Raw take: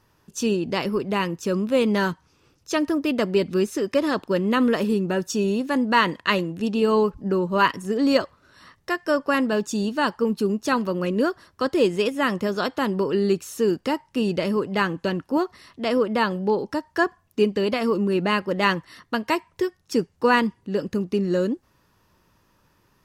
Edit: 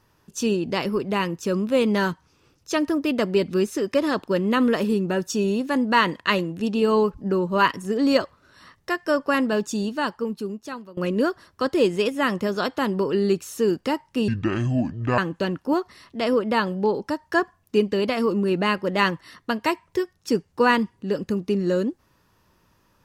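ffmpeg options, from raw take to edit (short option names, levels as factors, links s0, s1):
-filter_complex "[0:a]asplit=4[s0][s1][s2][s3];[s0]atrim=end=10.97,asetpts=PTS-STARTPTS,afade=t=out:st=9.63:d=1.34:silence=0.0749894[s4];[s1]atrim=start=10.97:end=14.284,asetpts=PTS-STARTPTS,afade=t=in:d=0.004:c=hsin:silence=0.0749894[s5];[s2]atrim=start=14.28:end=14.82,asetpts=PTS-STARTPTS,asetrate=26460,aresample=44100[s6];[s3]atrim=start=14.816[s7];[s4][s5]concat=n=2:v=0:a=1[s8];[s8][s6]acrossfade=d=0.004:c1=hsin:c2=hsin[s9];[s9][s7]acrossfade=d=0.004:c1=hsin:c2=hsin"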